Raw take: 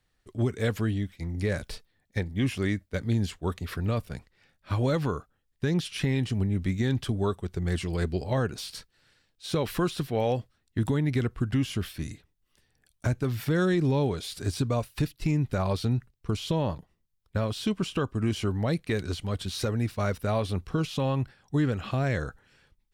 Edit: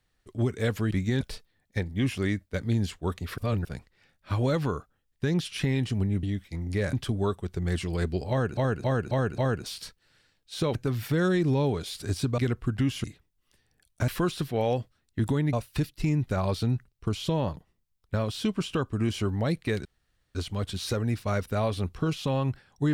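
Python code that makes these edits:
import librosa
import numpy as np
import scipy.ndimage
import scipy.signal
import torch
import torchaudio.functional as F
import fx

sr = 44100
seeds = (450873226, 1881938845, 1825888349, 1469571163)

y = fx.edit(x, sr, fx.swap(start_s=0.91, length_s=0.7, other_s=6.63, other_length_s=0.3),
    fx.reverse_span(start_s=3.78, length_s=0.27),
    fx.repeat(start_s=8.3, length_s=0.27, count=5),
    fx.swap(start_s=9.67, length_s=1.45, other_s=13.12, other_length_s=1.63),
    fx.cut(start_s=11.78, length_s=0.3),
    fx.insert_room_tone(at_s=19.07, length_s=0.5), tone=tone)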